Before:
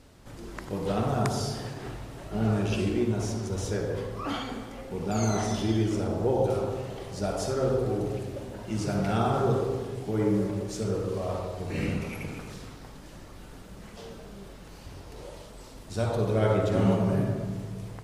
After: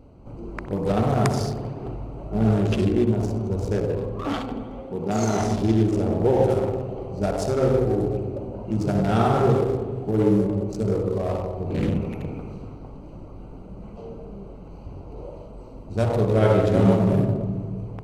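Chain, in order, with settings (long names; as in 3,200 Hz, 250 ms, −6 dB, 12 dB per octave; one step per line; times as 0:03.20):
adaptive Wiener filter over 25 samples
0:04.80–0:05.40: high-pass filter 160 Hz 6 dB per octave
spring reverb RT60 1.8 s, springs 59 ms, chirp 40 ms, DRR 13.5 dB
level +6.5 dB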